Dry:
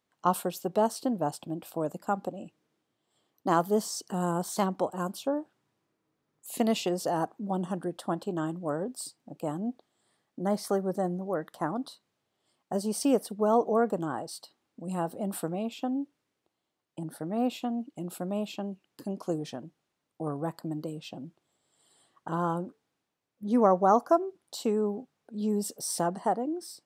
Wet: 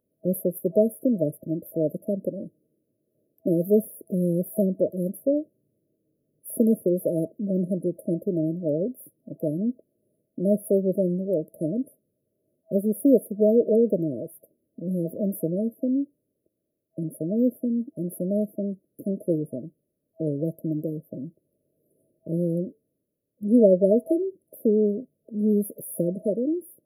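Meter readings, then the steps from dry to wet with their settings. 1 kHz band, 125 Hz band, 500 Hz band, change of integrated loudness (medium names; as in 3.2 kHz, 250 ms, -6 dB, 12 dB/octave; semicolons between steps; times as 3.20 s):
under -15 dB, +7.0 dB, +6.5 dB, +5.0 dB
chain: FFT band-reject 650–9800 Hz; high-order bell 1.2 kHz +11 dB 1.3 oct; trim +7 dB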